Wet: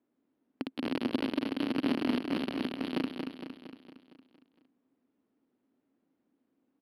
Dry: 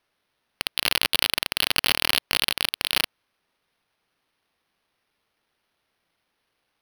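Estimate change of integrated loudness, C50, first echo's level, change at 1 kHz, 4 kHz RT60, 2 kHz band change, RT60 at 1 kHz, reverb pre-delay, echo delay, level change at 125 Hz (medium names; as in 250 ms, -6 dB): -10.5 dB, no reverb, -6.0 dB, -9.0 dB, no reverb, -16.0 dB, no reverb, no reverb, 230 ms, -1.0 dB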